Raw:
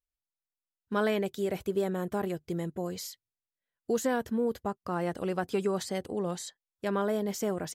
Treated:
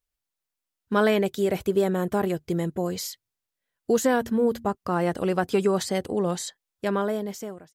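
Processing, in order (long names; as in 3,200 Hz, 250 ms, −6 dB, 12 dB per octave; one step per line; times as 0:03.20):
fade-out on the ending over 1.06 s
0:04.07–0:04.75: hum removal 77.08 Hz, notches 4
level +7 dB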